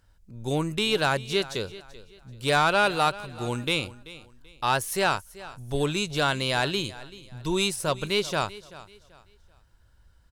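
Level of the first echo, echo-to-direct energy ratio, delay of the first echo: -18.0 dB, -17.5 dB, 385 ms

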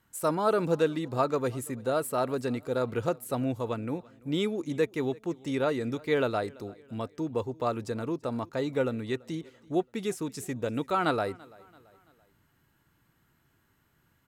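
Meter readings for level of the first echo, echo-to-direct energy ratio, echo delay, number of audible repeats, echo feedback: -24.0 dB, -23.0 dB, 336 ms, 2, 46%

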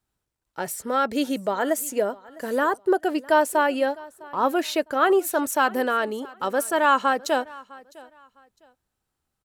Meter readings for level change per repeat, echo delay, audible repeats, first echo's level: -12.0 dB, 656 ms, 2, -22.0 dB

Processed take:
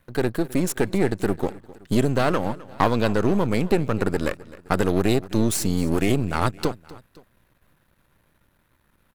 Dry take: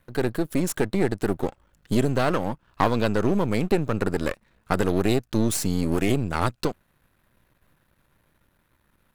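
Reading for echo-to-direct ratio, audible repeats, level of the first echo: -18.5 dB, 2, -19.5 dB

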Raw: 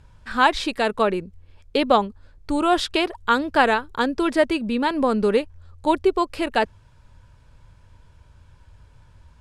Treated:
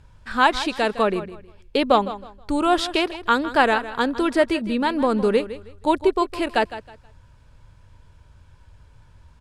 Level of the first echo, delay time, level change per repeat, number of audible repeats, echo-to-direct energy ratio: -14.0 dB, 159 ms, -11.5 dB, 2, -13.5 dB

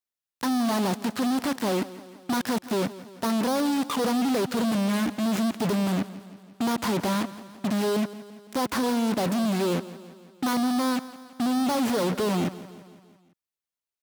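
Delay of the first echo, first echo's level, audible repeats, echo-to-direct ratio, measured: 169 ms, -16.5 dB, 4, -15.0 dB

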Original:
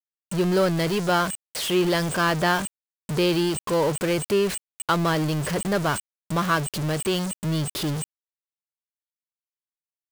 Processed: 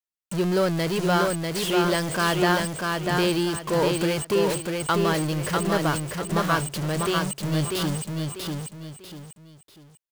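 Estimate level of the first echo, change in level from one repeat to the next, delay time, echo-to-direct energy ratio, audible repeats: -3.5 dB, -9.5 dB, 644 ms, -3.0 dB, 3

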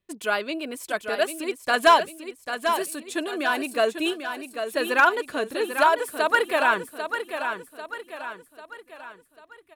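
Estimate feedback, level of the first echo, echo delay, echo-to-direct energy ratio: 46%, -8.0 dB, 794 ms, -7.0 dB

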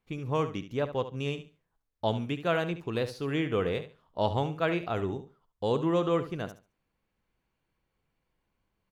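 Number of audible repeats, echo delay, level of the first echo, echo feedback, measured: 2, 71 ms, -12.0 dB, 21%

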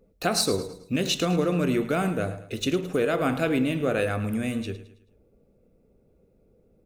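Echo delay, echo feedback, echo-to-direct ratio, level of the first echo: 108 ms, 40%, -13.0 dB, -14.0 dB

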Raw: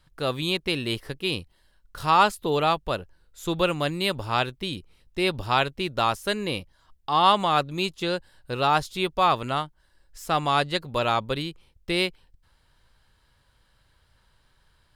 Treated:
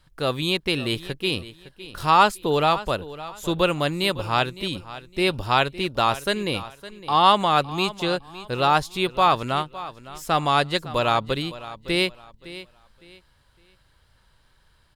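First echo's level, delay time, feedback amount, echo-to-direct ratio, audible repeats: -16.0 dB, 560 ms, 27%, -15.5 dB, 2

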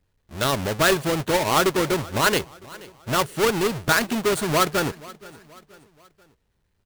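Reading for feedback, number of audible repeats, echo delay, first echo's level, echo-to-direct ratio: 46%, 3, 479 ms, -21.0 dB, -20.0 dB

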